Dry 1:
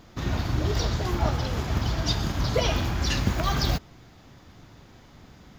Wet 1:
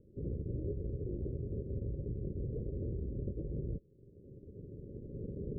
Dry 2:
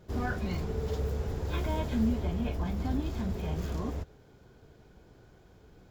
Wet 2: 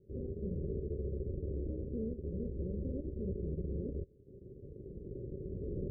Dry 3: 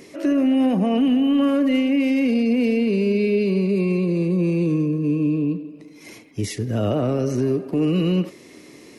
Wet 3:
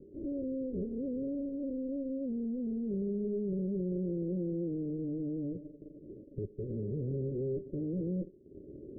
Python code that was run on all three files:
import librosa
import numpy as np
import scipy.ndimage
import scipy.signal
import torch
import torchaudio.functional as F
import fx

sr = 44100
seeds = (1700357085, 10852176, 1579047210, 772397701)

y = fx.lower_of_two(x, sr, delay_ms=0.94)
y = fx.recorder_agc(y, sr, target_db=-17.5, rise_db_per_s=12.0, max_gain_db=30)
y = fx.peak_eq(y, sr, hz=400.0, db=11.5, octaves=0.59)
y = fx.transient(y, sr, attack_db=-2, sustain_db=-8)
y = fx.tube_stage(y, sr, drive_db=25.0, bias=0.5)
y = scipy.signal.sosfilt(scipy.signal.cheby1(6, 3, 570.0, 'lowpass', fs=sr, output='sos'), y)
y = F.gain(torch.from_numpy(y), -5.5).numpy()